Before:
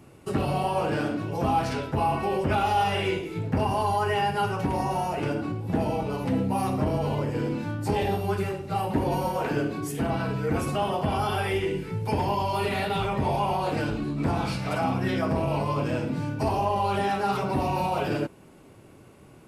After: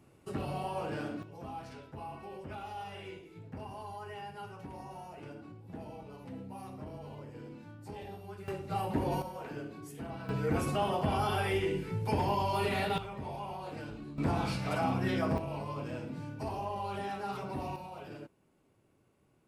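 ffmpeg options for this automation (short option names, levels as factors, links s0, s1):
-af "asetnsamples=n=441:p=0,asendcmd='1.23 volume volume -19dB;8.48 volume volume -6.5dB;9.22 volume volume -15dB;10.29 volume volume -4.5dB;12.98 volume volume -15dB;14.18 volume volume -5dB;15.38 volume volume -12dB;17.76 volume volume -19dB',volume=0.299"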